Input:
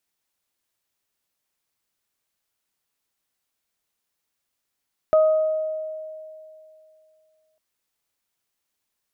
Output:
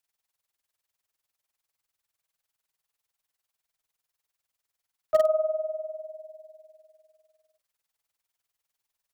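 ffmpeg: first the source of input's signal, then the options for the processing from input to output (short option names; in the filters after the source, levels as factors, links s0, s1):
-f lavfi -i "aevalsrc='0.251*pow(10,-3*t/2.67)*sin(2*PI*627*t)+0.0562*pow(10,-3*t/0.99)*sin(2*PI*1254*t)':d=2.45:s=44100"
-filter_complex "[0:a]bandreject=f=60:t=h:w=6,bandreject=f=120:t=h:w=6,bandreject=f=180:t=h:w=6,bandreject=f=240:t=h:w=6,bandreject=f=300:t=h:w=6,bandreject=f=360:t=h:w=6,bandreject=f=420:t=h:w=6,bandreject=f=480:t=h:w=6,bandreject=f=540:t=h:w=6,bandreject=f=600:t=h:w=6,tremolo=f=20:d=0.79,acrossover=split=180|350|430[s0][s1][s2][s3];[s1]acrusher=bits=5:mix=0:aa=0.000001[s4];[s0][s4][s2][s3]amix=inputs=4:normalize=0"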